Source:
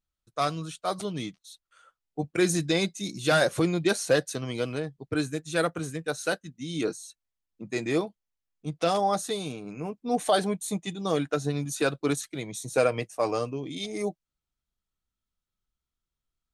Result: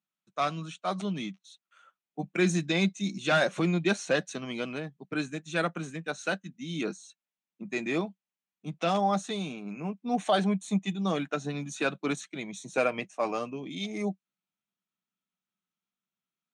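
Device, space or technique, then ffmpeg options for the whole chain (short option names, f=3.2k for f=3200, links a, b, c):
television speaker: -af "highpass=f=170:w=0.5412,highpass=f=170:w=1.3066,equalizer=f=190:t=q:w=4:g=8,equalizer=f=300:t=q:w=4:g=-3,equalizer=f=470:t=q:w=4:g=-7,equalizer=f=2.5k:t=q:w=4:g=4,equalizer=f=4.8k:t=q:w=4:g=-10,lowpass=f=6.8k:w=0.5412,lowpass=f=6.8k:w=1.3066,volume=-1dB"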